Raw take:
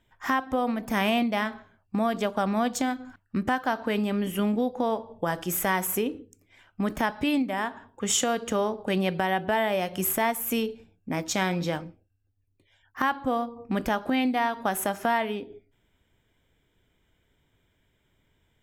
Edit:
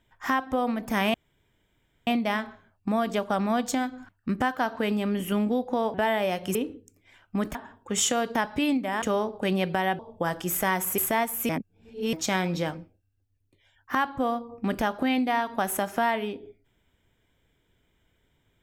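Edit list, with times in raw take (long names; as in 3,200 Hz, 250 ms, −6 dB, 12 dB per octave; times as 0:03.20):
0:01.14: splice in room tone 0.93 s
0:05.01–0:06.00: swap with 0:09.44–0:10.05
0:07.00–0:07.67: move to 0:08.47
0:10.56–0:11.20: reverse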